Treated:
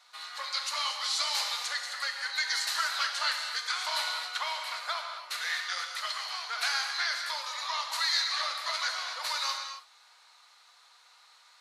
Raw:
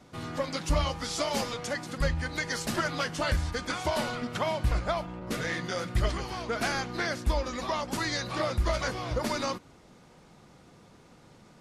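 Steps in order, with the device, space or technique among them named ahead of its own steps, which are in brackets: headphones lying on a table (HPF 1000 Hz 24 dB/oct; bell 4100 Hz +11.5 dB 0.27 oct); 5.47–6.61 HPF 350 Hz 12 dB/oct; non-linear reverb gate 0.29 s flat, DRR 3.5 dB

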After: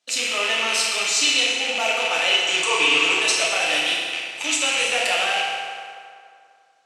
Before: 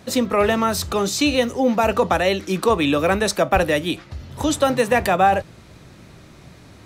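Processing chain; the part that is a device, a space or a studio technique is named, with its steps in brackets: 2.31–3.19 ripple EQ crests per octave 0.71, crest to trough 16 dB; gate -37 dBFS, range -20 dB; car door speaker with a rattle (rattling part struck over -29 dBFS, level -10 dBFS; speaker cabinet 86–8300 Hz, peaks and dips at 100 Hz -8 dB, 200 Hz +3 dB, 370 Hz +4 dB, 670 Hz +7 dB, 1300 Hz +3 dB, 3000 Hz +7 dB); differentiator; FDN reverb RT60 2.3 s, low-frequency decay 0.75×, high-frequency decay 0.65×, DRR -5.5 dB; gain +2 dB

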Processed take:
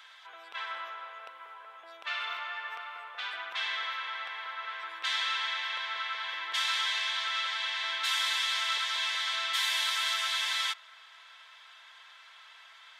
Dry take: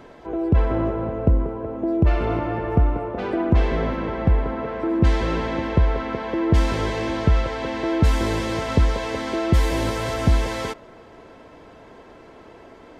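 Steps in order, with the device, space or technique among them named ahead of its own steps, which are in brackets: headphones lying on a table (HPF 1300 Hz 24 dB/oct; bell 3500 Hz +11 dB 0.41 oct)

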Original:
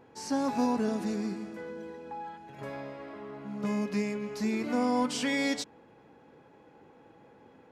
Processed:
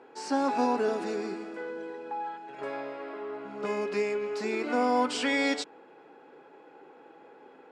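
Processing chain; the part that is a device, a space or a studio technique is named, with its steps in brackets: television speaker (speaker cabinet 200–8700 Hz, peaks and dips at 210 Hz -10 dB, 400 Hz +6 dB, 780 Hz +4 dB, 1400 Hz +6 dB, 2600 Hz +3 dB, 6200 Hz -6 dB); gain +2 dB

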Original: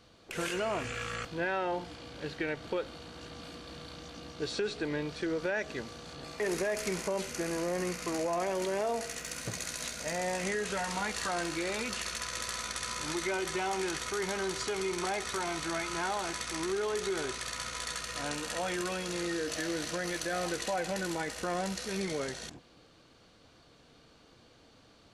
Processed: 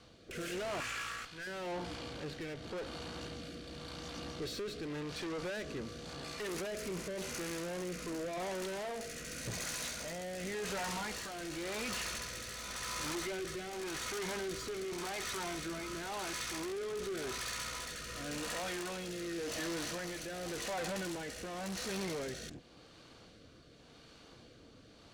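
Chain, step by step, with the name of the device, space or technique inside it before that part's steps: 0.8–1.47 resonant low shelf 770 Hz -12.5 dB, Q 1.5; overdriven rotary cabinet (tube stage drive 41 dB, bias 0.4; rotary speaker horn 0.9 Hz); gain +5.5 dB

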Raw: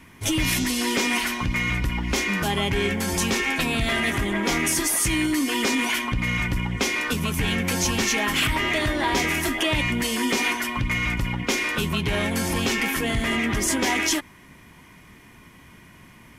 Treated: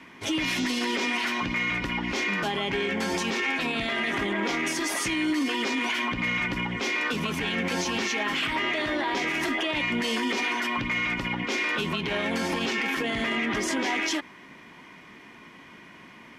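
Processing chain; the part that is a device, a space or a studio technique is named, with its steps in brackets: DJ mixer with the lows and highs turned down (three-band isolator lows -19 dB, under 190 Hz, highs -18 dB, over 5600 Hz; limiter -22 dBFS, peak gain reduction 11 dB); gain +3 dB

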